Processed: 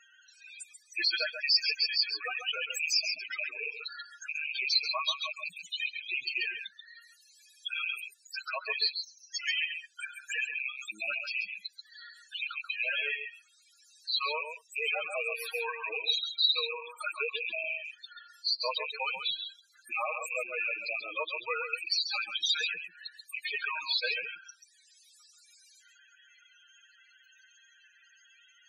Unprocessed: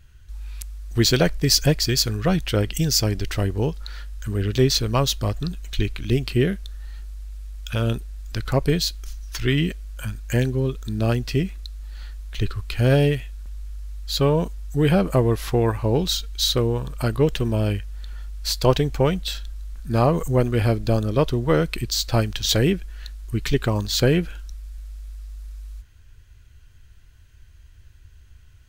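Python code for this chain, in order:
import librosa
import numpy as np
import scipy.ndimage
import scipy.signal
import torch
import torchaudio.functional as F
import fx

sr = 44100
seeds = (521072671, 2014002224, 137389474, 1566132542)

y = fx.rattle_buzz(x, sr, strikes_db=-21.0, level_db=-16.0)
y = scipy.signal.sosfilt(scipy.signal.butter(2, 1200.0, 'highpass', fs=sr, output='sos'), y)
y = fx.high_shelf(y, sr, hz=3800.0, db=2.5)
y = y + 0.41 * np.pad(y, (int(6.4 * sr / 1000.0), 0))[:len(y)]
y = fx.spec_topn(y, sr, count=8)
y = y + 10.0 ** (-8.5 / 20.0) * np.pad(y, (int(135 * sr / 1000.0), 0))[:len(y)]
y = fx.band_squash(y, sr, depth_pct=40)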